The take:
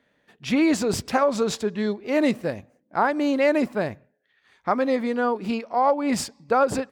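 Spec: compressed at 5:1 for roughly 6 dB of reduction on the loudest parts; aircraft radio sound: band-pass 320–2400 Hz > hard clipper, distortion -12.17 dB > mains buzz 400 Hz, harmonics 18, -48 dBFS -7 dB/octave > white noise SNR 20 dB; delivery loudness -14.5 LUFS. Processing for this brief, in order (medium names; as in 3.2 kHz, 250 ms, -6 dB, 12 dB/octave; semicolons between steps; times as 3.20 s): compression 5:1, threshold -22 dBFS; band-pass 320–2400 Hz; hard clipper -24 dBFS; mains buzz 400 Hz, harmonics 18, -48 dBFS -7 dB/octave; white noise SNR 20 dB; trim +16.5 dB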